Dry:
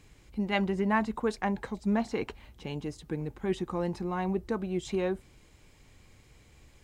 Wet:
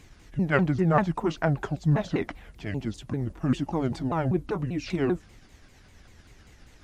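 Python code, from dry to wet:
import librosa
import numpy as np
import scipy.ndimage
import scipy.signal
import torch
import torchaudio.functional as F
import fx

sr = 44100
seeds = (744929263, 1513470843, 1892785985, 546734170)

y = fx.pitch_ramps(x, sr, semitones=-7.5, every_ms=196)
y = y * librosa.db_to_amplitude(6.0)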